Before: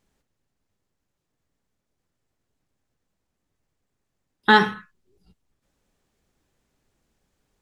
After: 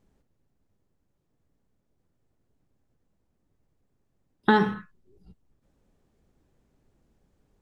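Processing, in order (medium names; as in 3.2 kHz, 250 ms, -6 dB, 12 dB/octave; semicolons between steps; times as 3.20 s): tilt shelf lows +6.5 dB; compression 3:1, threshold -18 dBFS, peak gain reduction 7.5 dB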